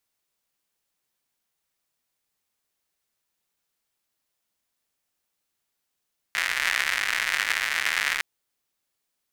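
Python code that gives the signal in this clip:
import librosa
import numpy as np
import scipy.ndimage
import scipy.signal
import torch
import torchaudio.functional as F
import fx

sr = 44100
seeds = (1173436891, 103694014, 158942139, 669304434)

y = fx.rain(sr, seeds[0], length_s=1.86, drops_per_s=160.0, hz=1900.0, bed_db=-27.0)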